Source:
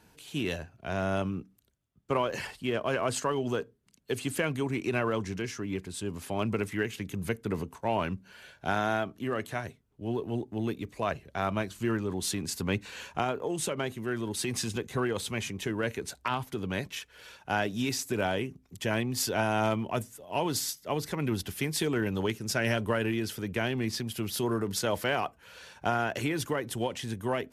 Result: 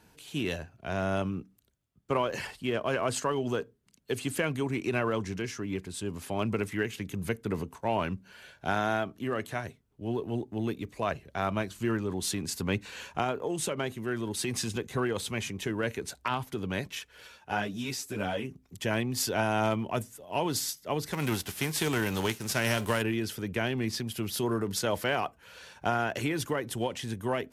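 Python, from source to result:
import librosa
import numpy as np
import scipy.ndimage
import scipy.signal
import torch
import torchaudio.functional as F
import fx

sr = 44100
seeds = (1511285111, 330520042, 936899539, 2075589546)

y = fx.ensemble(x, sr, at=(17.27, 18.43), fade=0.02)
y = fx.envelope_flatten(y, sr, power=0.6, at=(21.12, 23.01), fade=0.02)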